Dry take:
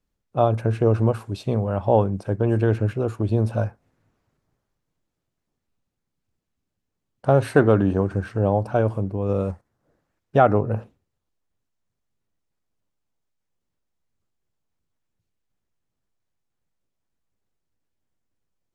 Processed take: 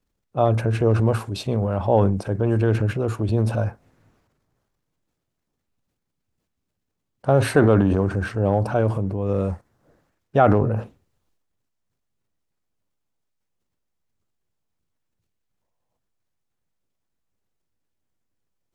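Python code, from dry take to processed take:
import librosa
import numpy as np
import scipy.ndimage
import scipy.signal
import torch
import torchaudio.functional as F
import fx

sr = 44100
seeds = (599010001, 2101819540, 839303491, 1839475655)

y = fx.transient(x, sr, attack_db=-1, sustain_db=8)
y = fx.spec_box(y, sr, start_s=15.62, length_s=0.36, low_hz=460.0, high_hz=1100.0, gain_db=10)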